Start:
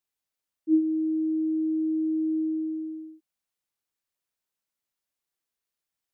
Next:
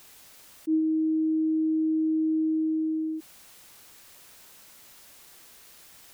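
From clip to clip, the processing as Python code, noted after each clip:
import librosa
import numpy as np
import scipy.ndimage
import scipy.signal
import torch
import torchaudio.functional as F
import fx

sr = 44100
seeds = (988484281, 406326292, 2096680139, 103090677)

y = fx.env_flatten(x, sr, amount_pct=70)
y = y * 10.0 ** (-4.5 / 20.0)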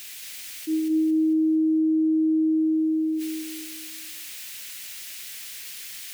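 y = fx.high_shelf_res(x, sr, hz=1500.0, db=12.0, q=1.5)
y = fx.echo_feedback(y, sr, ms=225, feedback_pct=43, wet_db=-4.5)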